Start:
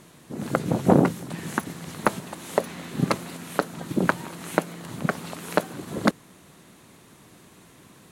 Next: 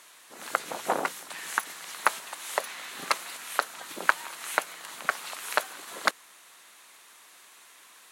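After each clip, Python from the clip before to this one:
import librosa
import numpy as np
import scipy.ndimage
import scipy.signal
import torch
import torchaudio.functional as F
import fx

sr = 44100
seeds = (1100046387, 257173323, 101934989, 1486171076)

y = scipy.signal.sosfilt(scipy.signal.butter(2, 1100.0, 'highpass', fs=sr, output='sos'), x)
y = F.gain(torch.from_numpy(y), 3.0).numpy()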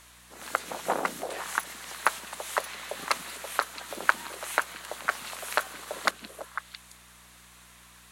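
y = fx.add_hum(x, sr, base_hz=60, snr_db=27)
y = fx.echo_stepped(y, sr, ms=167, hz=190.0, octaves=1.4, feedback_pct=70, wet_db=-1)
y = F.gain(torch.from_numpy(y), -1.0).numpy()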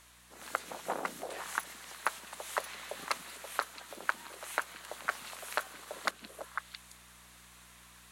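y = fx.rider(x, sr, range_db=4, speed_s=0.5)
y = F.gain(torch.from_numpy(y), -7.0).numpy()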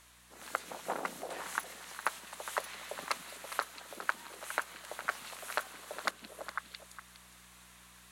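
y = x + 10.0 ** (-12.0 / 20.0) * np.pad(x, (int(411 * sr / 1000.0), 0))[:len(x)]
y = F.gain(torch.from_numpy(y), -1.0).numpy()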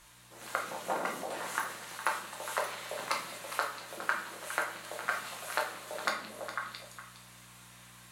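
y = fx.room_shoebox(x, sr, seeds[0], volume_m3=100.0, walls='mixed', distance_m=0.88)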